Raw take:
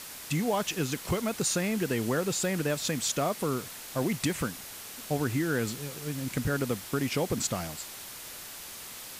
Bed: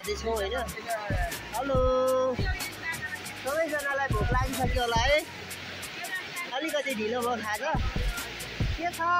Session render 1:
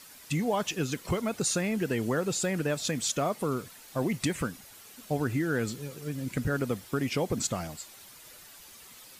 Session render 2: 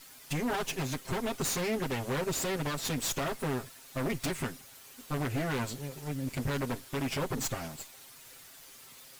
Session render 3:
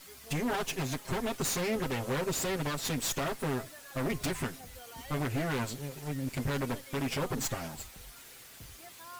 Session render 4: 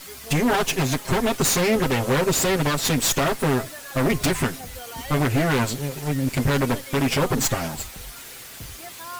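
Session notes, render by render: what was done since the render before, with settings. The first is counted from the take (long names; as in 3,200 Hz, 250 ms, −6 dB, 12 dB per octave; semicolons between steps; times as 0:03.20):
broadband denoise 10 dB, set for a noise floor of −43 dBFS
lower of the sound and its delayed copy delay 7.5 ms; wave folding −25.5 dBFS
mix in bed −23 dB
level +11.5 dB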